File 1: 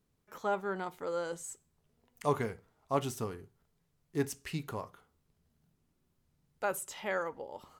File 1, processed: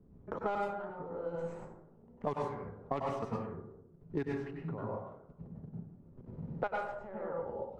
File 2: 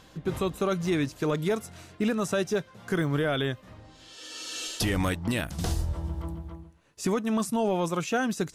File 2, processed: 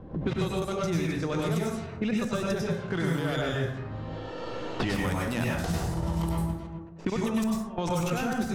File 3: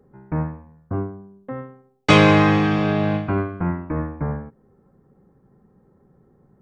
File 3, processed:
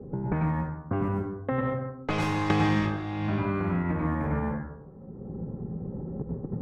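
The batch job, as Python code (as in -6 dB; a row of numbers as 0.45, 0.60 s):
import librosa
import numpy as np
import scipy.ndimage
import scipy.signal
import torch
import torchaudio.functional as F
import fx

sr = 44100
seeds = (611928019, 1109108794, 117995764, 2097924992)

y = fx.tracing_dist(x, sr, depth_ms=0.13)
y = fx.high_shelf(y, sr, hz=4700.0, db=2.5)
y = fx.tremolo_random(y, sr, seeds[0], hz=3.6, depth_pct=90)
y = fx.level_steps(y, sr, step_db=19)
y = fx.rev_plate(y, sr, seeds[1], rt60_s=0.66, hf_ratio=0.5, predelay_ms=85, drr_db=-4.0)
y = fx.env_lowpass(y, sr, base_hz=500.0, full_db=-31.0)
y = fx.dynamic_eq(y, sr, hz=770.0, q=4.6, threshold_db=-54.0, ratio=4.0, max_db=3)
y = fx.band_squash(y, sr, depth_pct=100)
y = y * librosa.db_to_amplitude(5.0)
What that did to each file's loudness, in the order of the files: -3.0, -1.0, -9.5 LU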